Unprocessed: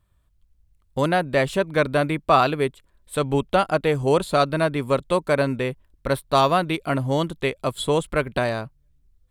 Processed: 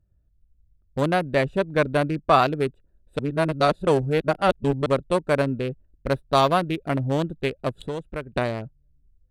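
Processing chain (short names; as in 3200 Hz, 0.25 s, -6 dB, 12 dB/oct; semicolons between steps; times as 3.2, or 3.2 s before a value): Wiener smoothing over 41 samples; 3.19–4.86 reverse; 7.7–8.33 compressor 2:1, threshold -34 dBFS, peak gain reduction 9.5 dB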